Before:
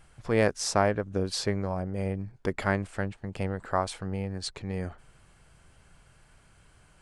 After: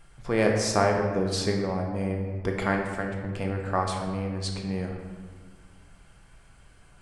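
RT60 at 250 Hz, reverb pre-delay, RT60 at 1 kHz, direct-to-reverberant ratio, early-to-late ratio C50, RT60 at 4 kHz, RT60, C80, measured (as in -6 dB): 2.3 s, 3 ms, 1.5 s, 1.0 dB, 4.0 dB, 0.95 s, 1.5 s, 5.5 dB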